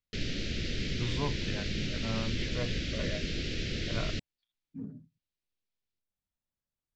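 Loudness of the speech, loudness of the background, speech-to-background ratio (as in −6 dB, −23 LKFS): −39.5 LKFS, −35.0 LKFS, −4.5 dB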